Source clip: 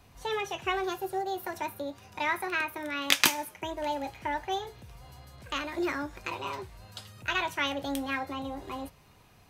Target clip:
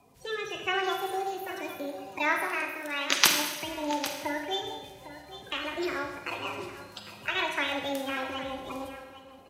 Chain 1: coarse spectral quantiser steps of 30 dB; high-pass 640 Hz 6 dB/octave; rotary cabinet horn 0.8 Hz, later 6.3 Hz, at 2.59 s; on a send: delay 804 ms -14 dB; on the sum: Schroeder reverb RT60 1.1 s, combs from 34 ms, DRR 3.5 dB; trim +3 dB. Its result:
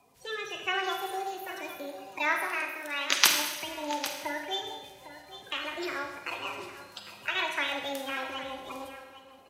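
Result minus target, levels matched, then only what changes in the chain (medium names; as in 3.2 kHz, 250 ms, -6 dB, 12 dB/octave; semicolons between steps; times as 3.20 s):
250 Hz band -4.5 dB
change: high-pass 230 Hz 6 dB/octave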